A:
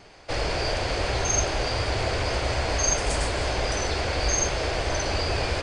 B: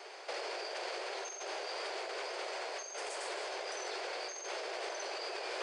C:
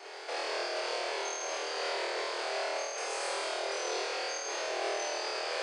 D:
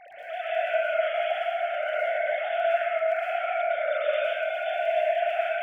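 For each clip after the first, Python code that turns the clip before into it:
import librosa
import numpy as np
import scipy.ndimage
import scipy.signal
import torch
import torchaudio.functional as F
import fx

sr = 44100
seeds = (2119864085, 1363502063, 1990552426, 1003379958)

y1 = scipy.signal.sosfilt(scipy.signal.ellip(4, 1.0, 40, 370.0, 'highpass', fs=sr, output='sos'), x)
y1 = fx.over_compress(y1, sr, threshold_db=-36.0, ratio=-1.0)
y1 = y1 * librosa.db_to_amplitude(-5.0)
y2 = fx.room_flutter(y1, sr, wall_m=4.3, rt60_s=1.2)
y3 = fx.sine_speech(y2, sr)
y3 = fx.dmg_crackle(y3, sr, seeds[0], per_s=11.0, level_db=-43.0)
y3 = fx.rev_plate(y3, sr, seeds[1], rt60_s=1.3, hf_ratio=0.8, predelay_ms=100, drr_db=-8.5)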